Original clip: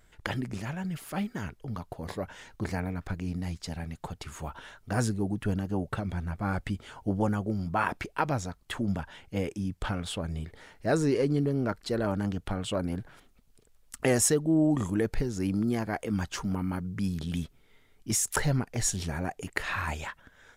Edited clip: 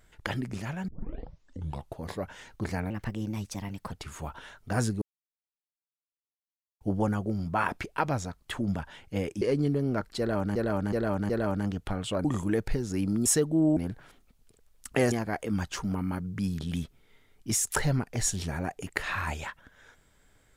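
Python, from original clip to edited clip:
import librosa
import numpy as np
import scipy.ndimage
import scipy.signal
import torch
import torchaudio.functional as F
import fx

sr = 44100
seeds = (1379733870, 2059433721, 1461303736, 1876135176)

y = fx.edit(x, sr, fx.tape_start(start_s=0.88, length_s=1.11),
    fx.speed_span(start_s=2.9, length_s=1.22, speed=1.2),
    fx.silence(start_s=5.22, length_s=1.79),
    fx.cut(start_s=9.62, length_s=1.51),
    fx.repeat(start_s=11.9, length_s=0.37, count=4),
    fx.swap(start_s=12.85, length_s=1.35, other_s=14.71, other_length_s=1.01), tone=tone)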